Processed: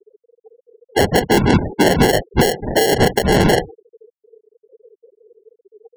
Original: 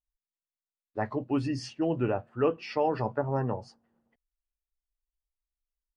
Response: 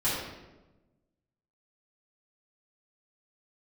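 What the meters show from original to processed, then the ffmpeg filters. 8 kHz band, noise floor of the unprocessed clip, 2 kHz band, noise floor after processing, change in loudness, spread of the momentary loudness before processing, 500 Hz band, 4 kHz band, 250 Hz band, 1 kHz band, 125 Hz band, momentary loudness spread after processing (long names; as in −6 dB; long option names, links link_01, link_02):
can't be measured, below −85 dBFS, +22.0 dB, below −85 dBFS, +15.0 dB, 6 LU, +14.0 dB, +24.5 dB, +14.0 dB, +14.5 dB, +14.5 dB, 5 LU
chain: -filter_complex "[0:a]equalizer=frequency=450:width_type=o:width=0.28:gain=14,aeval=exprs='val(0)+0.00178*sin(2*PI*770*n/s)':channel_layout=same,lowpass=frequency=6800:width=0.5412,lowpass=frequency=6800:width=1.3066,afftfilt=real='hypot(re,im)*cos(2*PI*random(0))':imag='hypot(re,im)*sin(2*PI*random(1))':win_size=512:overlap=0.75,acrusher=samples=36:mix=1:aa=0.000001,afftfilt=real='re*gte(hypot(re,im),0.00562)':imag='im*gte(hypot(re,im),0.00562)':win_size=1024:overlap=0.75,acrossover=split=390|3000[link_01][link_02][link_03];[link_02]acompressor=threshold=-26dB:ratio=6[link_04];[link_01][link_04][link_03]amix=inputs=3:normalize=0,adynamicequalizer=threshold=0.00251:dfrequency=160:dqfactor=2.2:tfrequency=160:tqfactor=2.2:attack=5:release=100:ratio=0.375:range=1.5:mode=boostabove:tftype=bell,acompressor=threshold=-29dB:ratio=6,alimiter=level_in=27.5dB:limit=-1dB:release=50:level=0:latency=1,volume=-2.5dB"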